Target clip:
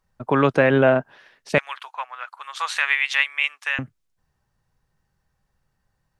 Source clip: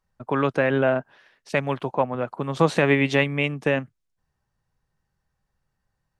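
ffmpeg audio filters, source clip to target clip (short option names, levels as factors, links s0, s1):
-filter_complex "[0:a]asettb=1/sr,asplit=3[s0][s1][s2];[s0]atrim=end=1.584[s3];[s1]atrim=start=1.58:end=3.79,asetpts=PTS-STARTPTS,afade=t=in:d=0.004:c=qsin,afade=t=out:st=2.206:d=0.004:c=qsin,highpass=f=1200:w=0.5412,highpass=f=1200:w=1.3066[s4];[s2]atrim=start=3.786[s5];[s3][s4]acrossfade=d=0.004:c1=hsin:c2=qsin[s6];[s6][s5]acrossfade=d=0.004:c1=qsin:c2=hsin,volume=1.68"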